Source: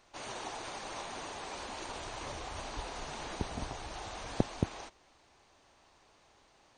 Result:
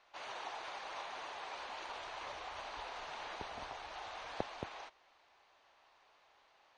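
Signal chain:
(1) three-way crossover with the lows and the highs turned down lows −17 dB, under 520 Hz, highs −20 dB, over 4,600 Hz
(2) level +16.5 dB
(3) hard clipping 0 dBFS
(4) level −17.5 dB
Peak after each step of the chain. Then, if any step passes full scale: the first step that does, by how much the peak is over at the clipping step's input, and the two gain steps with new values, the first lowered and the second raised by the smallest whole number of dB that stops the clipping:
−19.0, −2.5, −2.5, −20.0 dBFS
no step passes full scale

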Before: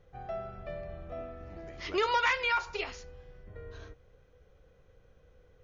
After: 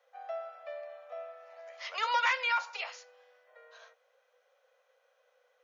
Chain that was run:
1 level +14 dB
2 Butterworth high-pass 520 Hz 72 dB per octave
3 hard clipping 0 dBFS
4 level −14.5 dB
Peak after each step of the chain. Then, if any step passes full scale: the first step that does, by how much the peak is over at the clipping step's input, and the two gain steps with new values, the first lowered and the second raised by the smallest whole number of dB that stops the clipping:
−3.5, −3.0, −3.0, −17.5 dBFS
no step passes full scale

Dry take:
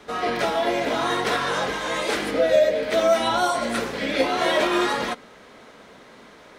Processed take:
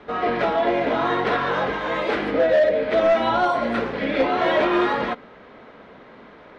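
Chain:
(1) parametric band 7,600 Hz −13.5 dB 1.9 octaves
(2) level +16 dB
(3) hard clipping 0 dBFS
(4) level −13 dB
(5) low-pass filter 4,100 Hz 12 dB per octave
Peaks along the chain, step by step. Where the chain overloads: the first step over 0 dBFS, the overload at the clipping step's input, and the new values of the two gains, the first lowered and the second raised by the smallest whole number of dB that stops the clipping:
−8.0, +8.0, 0.0, −13.0, −12.5 dBFS
step 2, 8.0 dB
step 2 +8 dB, step 4 −5 dB

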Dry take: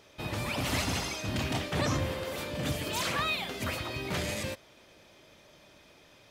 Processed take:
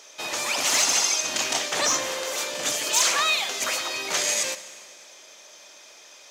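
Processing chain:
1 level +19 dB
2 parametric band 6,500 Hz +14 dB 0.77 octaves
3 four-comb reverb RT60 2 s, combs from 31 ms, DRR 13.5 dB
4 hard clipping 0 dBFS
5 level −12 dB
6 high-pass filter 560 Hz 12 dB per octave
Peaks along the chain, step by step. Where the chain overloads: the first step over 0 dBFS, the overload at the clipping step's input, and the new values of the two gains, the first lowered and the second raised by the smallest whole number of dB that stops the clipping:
+3.5, +5.5, +5.5, 0.0, −12.0, −9.5 dBFS
step 1, 5.5 dB
step 1 +13 dB, step 5 −6 dB

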